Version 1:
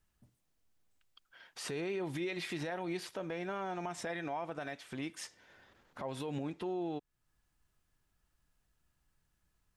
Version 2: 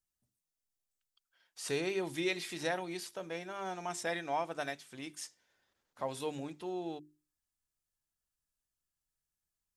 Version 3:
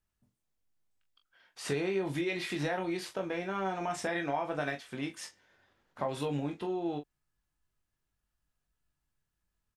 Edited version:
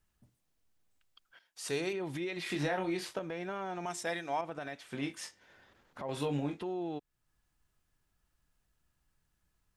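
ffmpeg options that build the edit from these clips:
-filter_complex "[1:a]asplit=2[a][b];[2:a]asplit=3[c][d][e];[0:a]asplit=6[f][g][h][i][j][k];[f]atrim=end=1.392[l];[a]atrim=start=1.388:end=1.932[m];[g]atrim=start=1.928:end=2.462[n];[c]atrim=start=2.458:end=3.192[o];[h]atrim=start=3.188:end=3.862[p];[b]atrim=start=3.858:end=4.412[q];[i]atrim=start=4.408:end=4.922[r];[d]atrim=start=4.918:end=5.412[s];[j]atrim=start=5.408:end=6.092[t];[e]atrim=start=6.088:end=6.602[u];[k]atrim=start=6.598[v];[l][m]acrossfade=d=0.004:c1=hsin:c2=hsin[w];[w][n]acrossfade=d=0.004:c1=hsin:c2=hsin[x];[x][o]acrossfade=d=0.004:c1=hsin:c2=hsin[y];[y][p]acrossfade=d=0.004:c1=hsin:c2=hsin[z];[z][q]acrossfade=d=0.004:c1=hsin:c2=hsin[aa];[aa][r]acrossfade=d=0.004:c1=hsin:c2=hsin[ab];[ab][s]acrossfade=d=0.004:c1=hsin:c2=hsin[ac];[ac][t]acrossfade=d=0.004:c1=hsin:c2=hsin[ad];[ad][u]acrossfade=d=0.004:c1=hsin:c2=hsin[ae];[ae][v]acrossfade=d=0.004:c1=hsin:c2=hsin"

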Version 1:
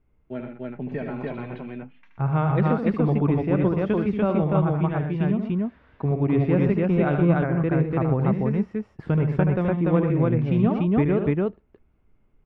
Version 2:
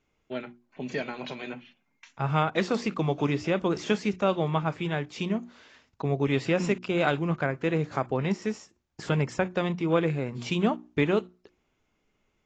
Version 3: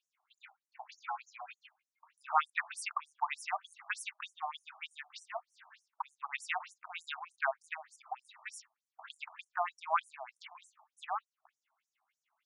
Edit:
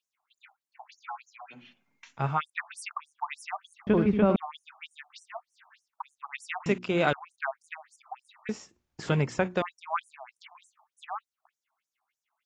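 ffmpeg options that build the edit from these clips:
-filter_complex "[1:a]asplit=3[a][b][c];[2:a]asplit=5[d][e][f][g][h];[d]atrim=end=1.66[i];[a]atrim=start=1.5:end=2.41[j];[e]atrim=start=2.25:end=3.872[k];[0:a]atrim=start=3.868:end=4.362[l];[f]atrim=start=4.358:end=6.662[m];[b]atrim=start=6.658:end=7.132[n];[g]atrim=start=7.128:end=8.492[o];[c]atrim=start=8.488:end=9.622[p];[h]atrim=start=9.618[q];[i][j]acrossfade=d=0.16:c1=tri:c2=tri[r];[r][k]acrossfade=d=0.16:c1=tri:c2=tri[s];[s][l]acrossfade=d=0.004:c1=hsin:c2=hsin[t];[t][m]acrossfade=d=0.004:c1=hsin:c2=hsin[u];[u][n]acrossfade=d=0.004:c1=hsin:c2=hsin[v];[v][o]acrossfade=d=0.004:c1=hsin:c2=hsin[w];[w][p]acrossfade=d=0.004:c1=hsin:c2=hsin[x];[x][q]acrossfade=d=0.004:c1=hsin:c2=hsin"

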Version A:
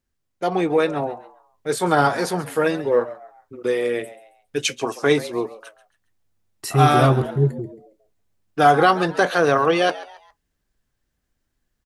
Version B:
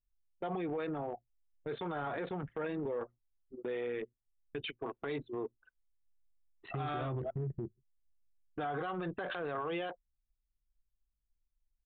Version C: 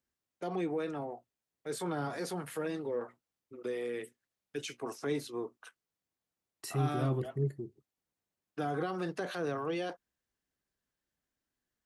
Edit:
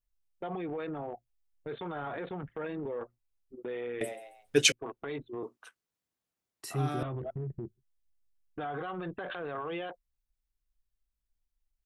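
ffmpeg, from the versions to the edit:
-filter_complex "[1:a]asplit=3[a][b][c];[a]atrim=end=4.012[d];[0:a]atrim=start=4.008:end=4.722[e];[b]atrim=start=4.718:end=5.432[f];[2:a]atrim=start=5.428:end=7.032[g];[c]atrim=start=7.028[h];[d][e]acrossfade=d=0.004:c1=hsin:c2=hsin[i];[i][f]acrossfade=d=0.004:c1=hsin:c2=hsin[j];[j][g]acrossfade=d=0.004:c1=hsin:c2=hsin[k];[k][h]acrossfade=d=0.004:c1=hsin:c2=hsin"

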